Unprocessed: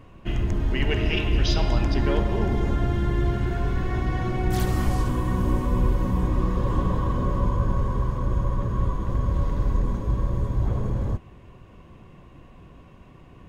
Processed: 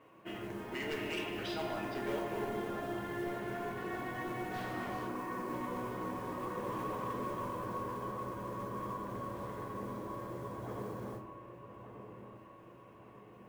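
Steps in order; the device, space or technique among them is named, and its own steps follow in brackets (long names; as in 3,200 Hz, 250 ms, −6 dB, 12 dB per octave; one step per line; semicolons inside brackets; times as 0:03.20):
0:05.07–0:05.53: Chebyshev band-pass filter 160–2,600 Hz, order 4
carbon microphone (band-pass filter 350–2,700 Hz; soft clipping −26.5 dBFS, distortion −15 dB; noise that follows the level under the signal 22 dB)
delay with a low-pass on its return 1,184 ms, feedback 48%, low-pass 1,700 Hz, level −10 dB
rectangular room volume 71 cubic metres, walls mixed, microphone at 0.57 metres
level −7 dB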